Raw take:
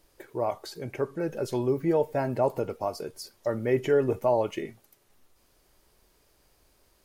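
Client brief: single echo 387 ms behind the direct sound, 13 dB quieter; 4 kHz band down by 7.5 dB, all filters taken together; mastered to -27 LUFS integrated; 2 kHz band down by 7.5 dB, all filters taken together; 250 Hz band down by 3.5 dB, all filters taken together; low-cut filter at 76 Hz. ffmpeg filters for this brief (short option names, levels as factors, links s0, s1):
-af "highpass=76,equalizer=f=250:t=o:g=-5,equalizer=f=2000:t=o:g=-8,equalizer=f=4000:t=o:g=-8,aecho=1:1:387:0.224,volume=1.5"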